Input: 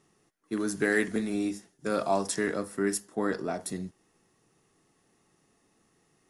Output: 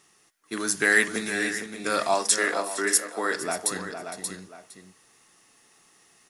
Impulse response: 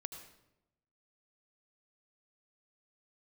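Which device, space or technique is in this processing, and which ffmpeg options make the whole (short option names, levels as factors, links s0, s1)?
ducked delay: -filter_complex "[0:a]asplit=3[s0][s1][s2];[s1]adelay=581,volume=0.794[s3];[s2]apad=whole_len=303408[s4];[s3][s4]sidechaincompress=threshold=0.0141:ratio=8:attack=16:release=1170[s5];[s0][s5]amix=inputs=2:normalize=0,asettb=1/sr,asplit=3[s6][s7][s8];[s6]atrim=end=2.144[s9];[s7]atrim=start=2.14:end=3.35,asetpts=PTS-STARTPTS,afade=t=in:d=0.004:c=qsin,afade=t=out:st=1.206:d=0.004:c=qsin,highpass=f=260:w=0.5412,highpass=f=260:w=1.3066[s10];[s8]atrim=start=3.346[s11];[s9][s10]acrossfade=d=0.004:c1=hsin:c2=qsin[s12];[s12][s11]acrossfade=d=0.004:c1=qsin:c2=hsin,tiltshelf=f=750:g=-8.5,asplit=2[s13][s14];[s14]adelay=460.6,volume=0.398,highshelf=f=4000:g=-10.4[s15];[s13][s15]amix=inputs=2:normalize=0,volume=1.5"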